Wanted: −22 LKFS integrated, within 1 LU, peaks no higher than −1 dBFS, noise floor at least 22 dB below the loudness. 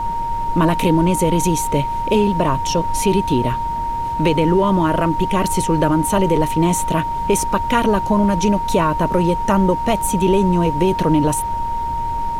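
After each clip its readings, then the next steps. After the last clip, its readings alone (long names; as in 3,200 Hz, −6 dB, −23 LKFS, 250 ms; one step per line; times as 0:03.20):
interfering tone 930 Hz; level of the tone −20 dBFS; background noise floor −22 dBFS; target noise floor −40 dBFS; integrated loudness −17.5 LKFS; sample peak −4.0 dBFS; target loudness −22.0 LKFS
→ notch filter 930 Hz, Q 30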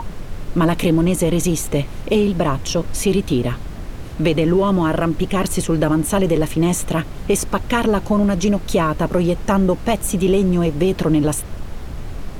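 interfering tone none found; background noise floor −31 dBFS; target noise floor −41 dBFS
→ noise reduction from a noise print 10 dB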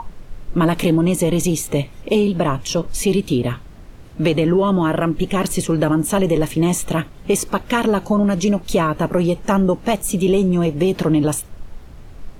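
background noise floor −39 dBFS; target noise floor −41 dBFS
→ noise reduction from a noise print 6 dB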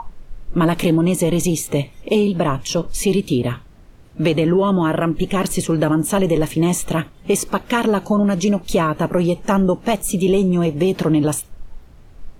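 background noise floor −44 dBFS; integrated loudness −18.5 LKFS; sample peak −5.5 dBFS; target loudness −22.0 LKFS
→ level −3.5 dB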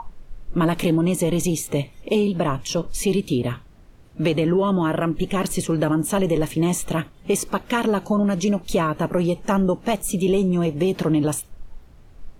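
integrated loudness −22.0 LKFS; sample peak −9.0 dBFS; background noise floor −47 dBFS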